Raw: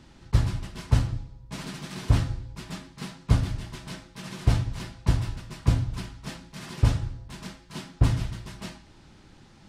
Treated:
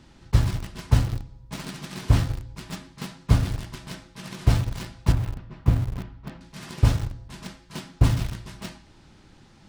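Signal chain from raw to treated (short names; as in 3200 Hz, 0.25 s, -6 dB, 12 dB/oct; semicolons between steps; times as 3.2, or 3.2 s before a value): 5.12–6.41 tape spacing loss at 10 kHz 35 dB; in parallel at -10 dB: bit-crush 5-bit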